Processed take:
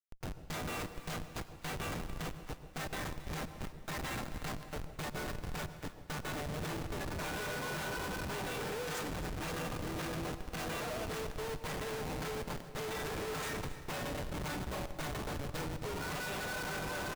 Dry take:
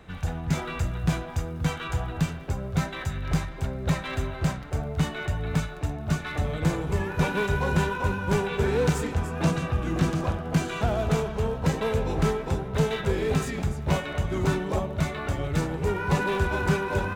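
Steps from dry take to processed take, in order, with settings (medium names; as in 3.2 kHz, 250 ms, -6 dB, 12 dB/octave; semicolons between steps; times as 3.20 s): low-pass 2.2 kHz 6 dB/octave; differentiator; comb 6.6 ms, depth 93%; in parallel at -1.5 dB: peak limiter -37.5 dBFS, peak gain reduction 8.5 dB; on the sum: Schmitt trigger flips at -40.5 dBFS; echo whose repeats swap between lows and highs 136 ms, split 870 Hz, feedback 73%, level -12.5 dB; on a send at -13 dB: reverberation, pre-delay 83 ms; on the sum: trim +4 dB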